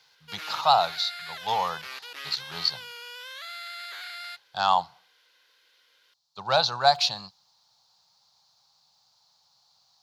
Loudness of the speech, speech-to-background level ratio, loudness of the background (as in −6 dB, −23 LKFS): −25.5 LKFS, 12.5 dB, −38.0 LKFS